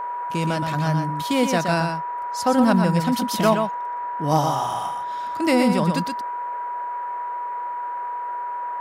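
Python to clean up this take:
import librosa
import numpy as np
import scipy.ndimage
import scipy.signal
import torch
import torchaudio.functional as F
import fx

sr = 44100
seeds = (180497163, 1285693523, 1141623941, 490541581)

y = fx.fix_declip(x, sr, threshold_db=-8.0)
y = fx.notch(y, sr, hz=970.0, q=30.0)
y = fx.noise_reduce(y, sr, print_start_s=7.72, print_end_s=8.22, reduce_db=30.0)
y = fx.fix_echo_inverse(y, sr, delay_ms=121, level_db=-6.0)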